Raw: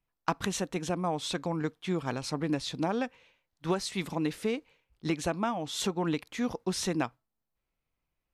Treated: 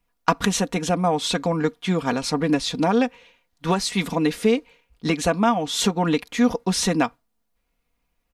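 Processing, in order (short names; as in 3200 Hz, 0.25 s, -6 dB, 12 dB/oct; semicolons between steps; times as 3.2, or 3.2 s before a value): comb 4.2 ms, depth 56%; gain +9 dB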